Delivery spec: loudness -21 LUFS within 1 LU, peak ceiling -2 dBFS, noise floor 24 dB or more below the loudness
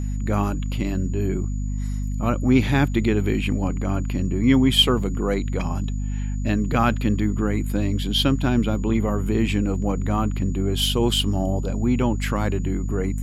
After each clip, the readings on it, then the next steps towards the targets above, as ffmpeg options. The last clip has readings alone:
hum 50 Hz; harmonics up to 250 Hz; hum level -23 dBFS; steady tone 6900 Hz; tone level -48 dBFS; loudness -22.5 LUFS; peak -5.0 dBFS; loudness target -21.0 LUFS
-> -af "bandreject=f=50:t=h:w=4,bandreject=f=100:t=h:w=4,bandreject=f=150:t=h:w=4,bandreject=f=200:t=h:w=4,bandreject=f=250:t=h:w=4"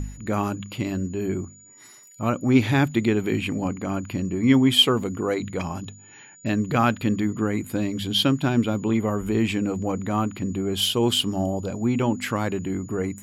hum none; steady tone 6900 Hz; tone level -48 dBFS
-> -af "bandreject=f=6.9k:w=30"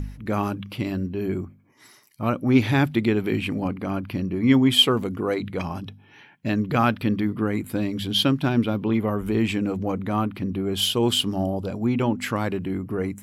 steady tone none; loudness -23.5 LUFS; peak -5.5 dBFS; loudness target -21.0 LUFS
-> -af "volume=2.5dB"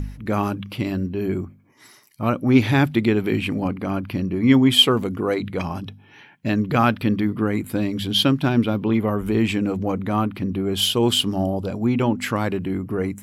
loudness -21.0 LUFS; peak -3.0 dBFS; noise floor -51 dBFS

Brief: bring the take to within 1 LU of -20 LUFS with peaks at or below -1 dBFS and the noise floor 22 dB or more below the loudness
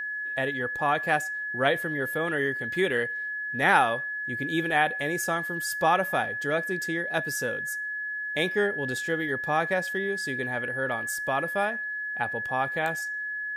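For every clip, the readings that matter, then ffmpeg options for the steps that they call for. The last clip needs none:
steady tone 1700 Hz; tone level -30 dBFS; loudness -27.0 LUFS; peak -6.5 dBFS; loudness target -20.0 LUFS
-> -af "bandreject=f=1.7k:w=30"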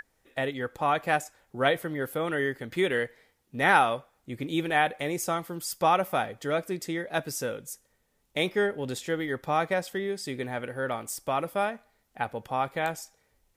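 steady tone none; loudness -29.0 LUFS; peak -7.5 dBFS; loudness target -20.0 LUFS
-> -af "volume=9dB,alimiter=limit=-1dB:level=0:latency=1"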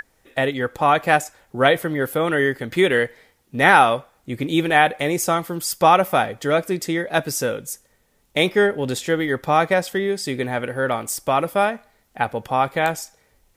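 loudness -20.0 LUFS; peak -1.0 dBFS; noise floor -63 dBFS

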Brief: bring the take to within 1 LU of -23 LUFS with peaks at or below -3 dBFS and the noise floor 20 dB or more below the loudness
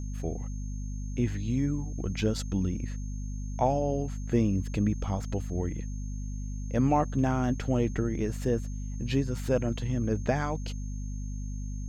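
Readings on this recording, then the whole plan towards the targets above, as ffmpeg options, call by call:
hum 50 Hz; harmonics up to 250 Hz; hum level -32 dBFS; steady tone 6400 Hz; tone level -52 dBFS; loudness -31.0 LUFS; peak -12.5 dBFS; loudness target -23.0 LUFS
-> -af "bandreject=f=50:t=h:w=6,bandreject=f=100:t=h:w=6,bandreject=f=150:t=h:w=6,bandreject=f=200:t=h:w=6,bandreject=f=250:t=h:w=6"
-af "bandreject=f=6.4k:w=30"
-af "volume=8dB"

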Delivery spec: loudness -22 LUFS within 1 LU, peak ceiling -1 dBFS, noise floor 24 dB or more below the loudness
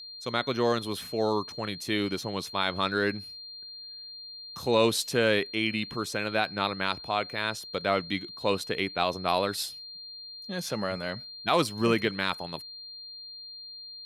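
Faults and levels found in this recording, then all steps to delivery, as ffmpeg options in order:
steady tone 4200 Hz; tone level -41 dBFS; loudness -29.0 LUFS; peak -10.5 dBFS; loudness target -22.0 LUFS
-> -af "bandreject=f=4.2k:w=30"
-af "volume=7dB"

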